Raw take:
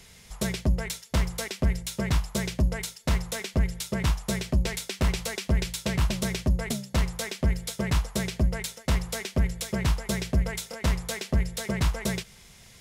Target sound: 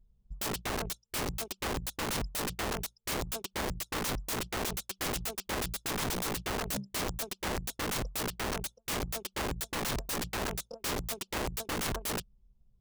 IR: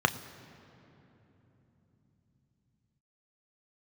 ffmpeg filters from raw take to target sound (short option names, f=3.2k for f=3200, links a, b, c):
-af "asuperstop=centerf=1900:order=4:qfactor=1.4,anlmdn=10,aeval=exprs='(mod(26.6*val(0)+1,2)-1)/26.6':c=same"